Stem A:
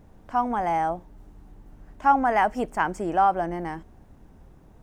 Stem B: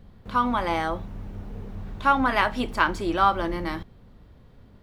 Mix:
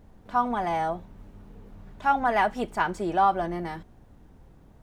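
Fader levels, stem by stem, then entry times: -2.5, -10.0 dB; 0.00, 0.00 s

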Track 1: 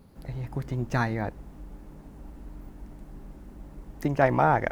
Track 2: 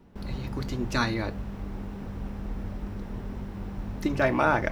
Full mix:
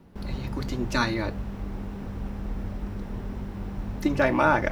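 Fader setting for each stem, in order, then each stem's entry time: -8.5, +1.5 dB; 0.00, 0.00 s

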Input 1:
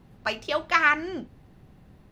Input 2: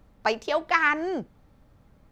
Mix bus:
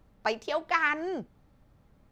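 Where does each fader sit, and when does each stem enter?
-18.0, -4.5 dB; 0.00, 0.00 s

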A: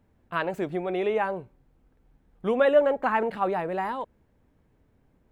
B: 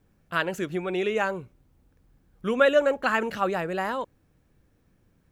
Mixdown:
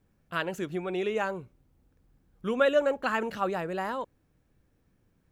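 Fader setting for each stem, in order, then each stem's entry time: -17.5, -4.5 dB; 0.00, 0.00 s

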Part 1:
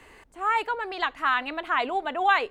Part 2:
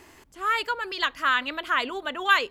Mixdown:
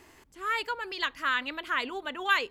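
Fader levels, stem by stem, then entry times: -17.5, -4.5 dB; 0.00, 0.00 s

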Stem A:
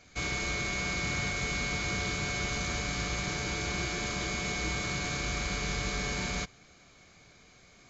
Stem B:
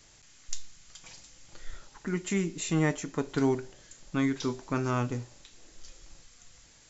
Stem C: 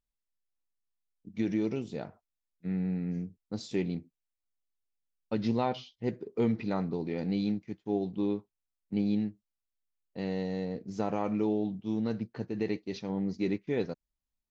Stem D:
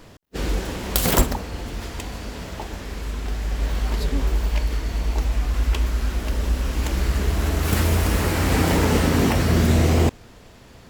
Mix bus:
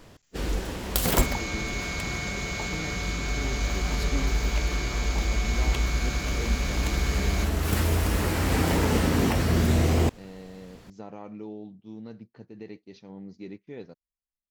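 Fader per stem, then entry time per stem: -0.5, -13.0, -10.0, -4.5 dB; 1.00, 0.00, 0.00, 0.00 s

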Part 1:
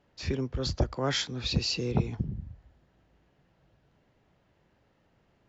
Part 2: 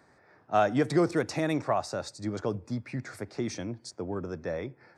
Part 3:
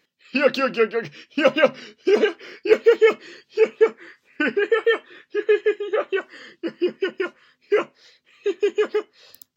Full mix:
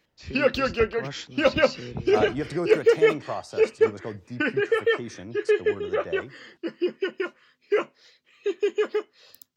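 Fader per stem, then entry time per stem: -7.0, -4.0, -3.5 dB; 0.00, 1.60, 0.00 s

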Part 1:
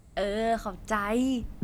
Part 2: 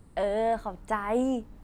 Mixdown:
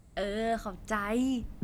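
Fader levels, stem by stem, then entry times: -3.0, -18.0 dB; 0.00, 0.00 s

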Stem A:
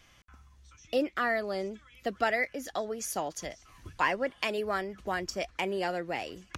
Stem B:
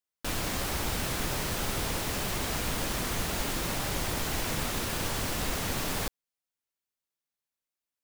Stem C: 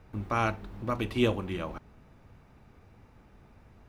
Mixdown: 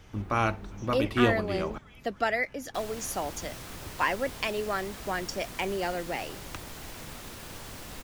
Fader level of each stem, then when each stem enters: +0.5, -11.0, +1.5 dB; 0.00, 2.50, 0.00 s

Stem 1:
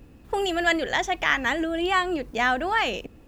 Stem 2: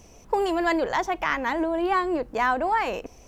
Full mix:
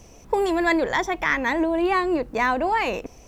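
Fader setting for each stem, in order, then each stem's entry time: -7.5, +2.0 dB; 0.00, 0.00 s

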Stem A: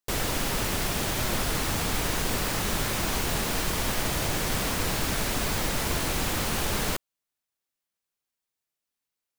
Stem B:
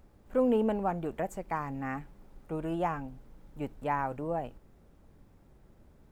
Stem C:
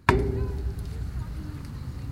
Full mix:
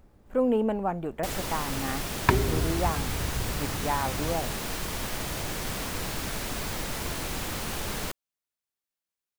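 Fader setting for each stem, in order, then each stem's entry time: -5.0, +2.0, -1.5 dB; 1.15, 0.00, 2.20 s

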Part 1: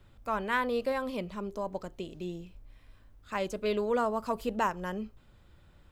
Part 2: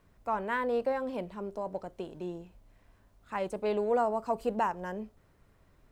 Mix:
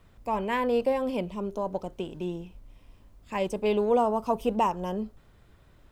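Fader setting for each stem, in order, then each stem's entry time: -1.0, +2.5 dB; 0.00, 0.00 s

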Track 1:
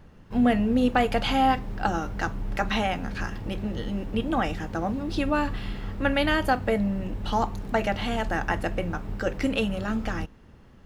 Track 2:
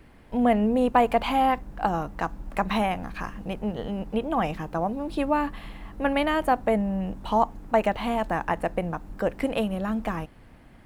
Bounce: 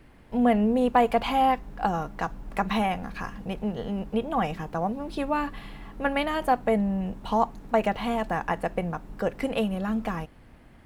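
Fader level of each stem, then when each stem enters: -11.5, -1.5 dB; 0.00, 0.00 s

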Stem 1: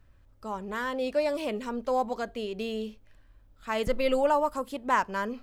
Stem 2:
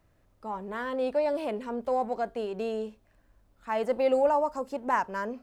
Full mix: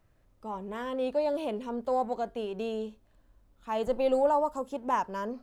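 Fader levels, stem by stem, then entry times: -12.0, -2.5 dB; 0.00, 0.00 s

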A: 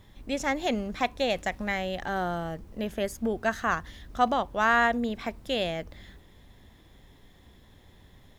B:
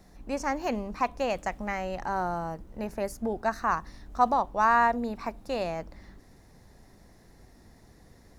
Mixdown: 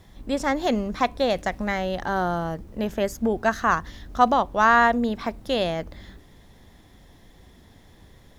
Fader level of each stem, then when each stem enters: +1.5, -0.5 dB; 0.00, 0.00 s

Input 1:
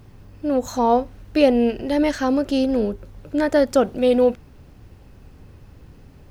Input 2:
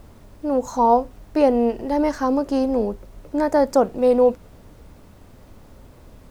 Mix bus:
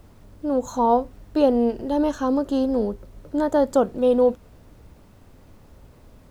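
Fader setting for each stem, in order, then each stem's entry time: -10.0, -4.5 dB; 0.00, 0.00 s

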